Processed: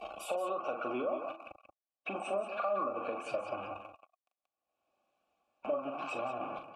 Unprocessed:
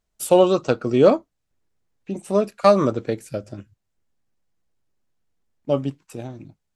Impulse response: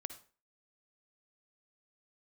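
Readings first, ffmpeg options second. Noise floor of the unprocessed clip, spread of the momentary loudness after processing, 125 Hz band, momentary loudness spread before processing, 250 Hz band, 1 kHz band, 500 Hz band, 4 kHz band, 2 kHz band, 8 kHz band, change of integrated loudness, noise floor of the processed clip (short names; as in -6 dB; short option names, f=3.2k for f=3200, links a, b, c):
-77 dBFS, 11 LU, -28.0 dB, 20 LU, -21.0 dB, -10.0 dB, -16.5 dB, -15.5 dB, -6.5 dB, -18.0 dB, -17.5 dB, under -85 dBFS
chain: -filter_complex "[0:a]aeval=exprs='val(0)+0.5*0.0668*sgn(val(0))':c=same,asplit=3[a][b][c];[a]bandpass=f=730:t=q:w=8,volume=0dB[d];[b]bandpass=f=1.09k:t=q:w=8,volume=-6dB[e];[c]bandpass=f=2.44k:t=q:w=8,volume=-9dB[f];[d][e][f]amix=inputs=3:normalize=0,acrossover=split=140[g][h];[h]alimiter=limit=-23.5dB:level=0:latency=1:release=50[i];[g][i]amix=inputs=2:normalize=0,adynamicequalizer=threshold=0.00398:dfrequency=1300:dqfactor=2:tfrequency=1300:tqfactor=2:attack=5:release=100:ratio=0.375:range=2:mode=boostabove:tftype=bell,acompressor=threshold=-38dB:ratio=6,highshelf=f=11k:g=8.5,afftdn=nr=22:nf=-57,aecho=1:1:3.5:0.42,asplit=2[j][k];[k]aecho=0:1:40.82|180.8:0.398|0.316[l];[j][l]amix=inputs=2:normalize=0,acompressor=mode=upward:threshold=-56dB:ratio=2.5,volume=4.5dB"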